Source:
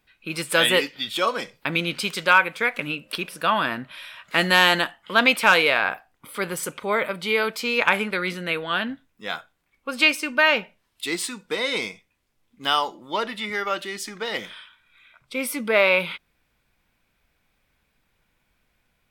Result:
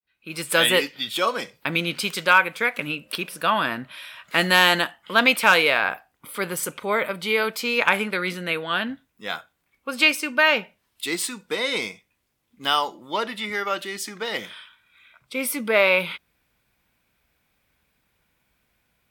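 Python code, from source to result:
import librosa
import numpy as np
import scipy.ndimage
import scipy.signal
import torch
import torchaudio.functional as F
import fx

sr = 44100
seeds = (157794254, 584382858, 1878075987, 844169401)

y = fx.fade_in_head(x, sr, length_s=0.52)
y = scipy.signal.sosfilt(scipy.signal.butter(2, 44.0, 'highpass', fs=sr, output='sos'), y)
y = fx.high_shelf(y, sr, hz=12000.0, db=8.0)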